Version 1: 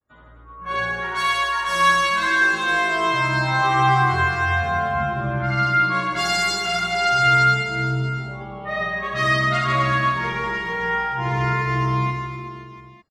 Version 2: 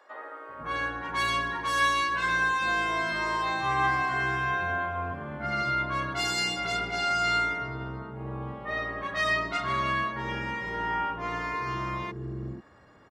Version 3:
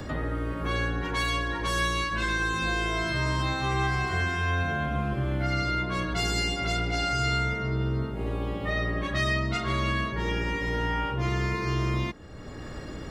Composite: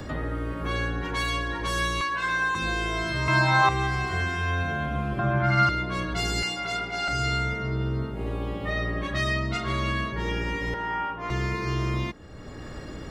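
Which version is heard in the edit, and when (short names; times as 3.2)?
3
2.01–2.55 from 2
3.28–3.69 from 1
5.19–5.69 from 1
6.43–7.08 from 2
10.74–11.3 from 2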